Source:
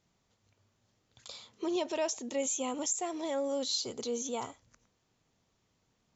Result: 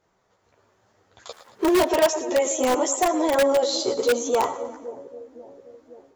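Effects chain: 1.31–1.77 s: dead-time distortion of 0.17 ms; high-order bell 790 Hz +10.5 dB 2.8 oct; two-band feedback delay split 570 Hz, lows 530 ms, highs 112 ms, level -12.5 dB; chorus voices 2, 0.93 Hz, delay 13 ms, depth 3.2 ms; in parallel at -5 dB: integer overflow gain 21 dB; on the sum: level rider gain up to 5 dB

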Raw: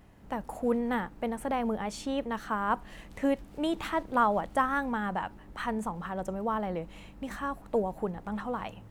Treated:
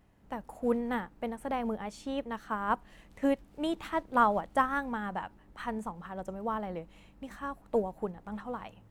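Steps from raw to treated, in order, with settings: upward expansion 1.5:1, over -40 dBFS; trim +1 dB

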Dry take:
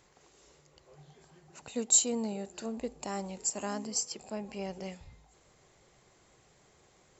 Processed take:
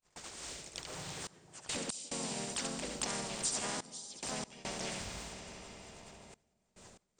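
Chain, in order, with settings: gate -60 dBFS, range -57 dB; band-stop 420 Hz, Q 13; on a send: delay 71 ms -6.5 dB; on the sum: time-frequency box 0.49–0.79 s, 720–1900 Hz -8 dB; bass shelf 150 Hz +4 dB; hum notches 60/120/180/240/300/360/420/480/540/600 Hz; compression 2.5:1, threshold -46 dBFS, peak gain reduction 17.5 dB; harmony voices -7 st -10 dB, -4 st -6 dB, +3 st -2 dB; treble shelf 4.3 kHz +7.5 dB; algorithmic reverb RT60 4.4 s, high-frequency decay 0.85×, pre-delay 70 ms, DRR 13 dB; trance gate "xxxxxx..x.xx" 71 bpm -24 dB; spectrum-flattening compressor 2:1; trim +1 dB

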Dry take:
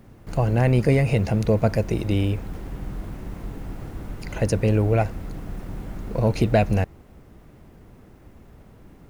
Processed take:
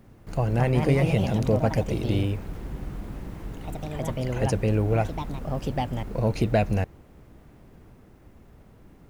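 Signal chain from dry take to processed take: ever faster or slower copies 276 ms, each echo +3 st, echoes 2, each echo -6 dB; trim -3.5 dB

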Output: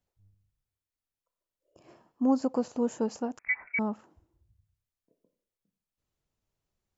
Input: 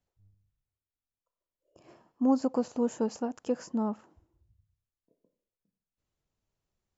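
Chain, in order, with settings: 3.39–3.79 s: frequency inversion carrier 2.5 kHz

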